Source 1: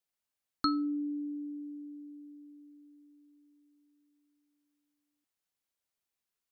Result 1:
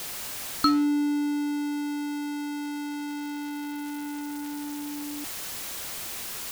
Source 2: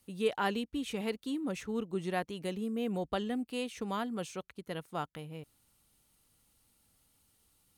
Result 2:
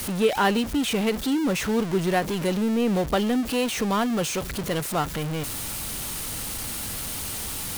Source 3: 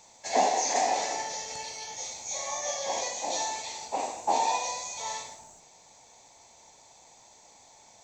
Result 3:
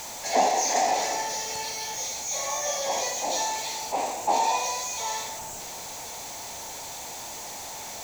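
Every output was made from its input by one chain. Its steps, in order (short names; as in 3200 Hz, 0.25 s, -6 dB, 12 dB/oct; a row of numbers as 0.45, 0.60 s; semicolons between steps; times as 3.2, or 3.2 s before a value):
zero-crossing step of -34.5 dBFS; ending taper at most 200 dB/s; normalise peaks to -9 dBFS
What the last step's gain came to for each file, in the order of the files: +6.5, +8.5, +1.5 dB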